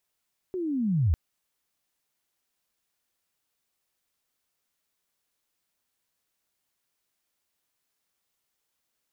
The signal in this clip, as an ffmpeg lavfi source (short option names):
-f lavfi -i "aevalsrc='pow(10,(-28.5+10*t/0.6)/20)*sin(2*PI*(380*t-312*t*t/(2*0.6)))':d=0.6:s=44100"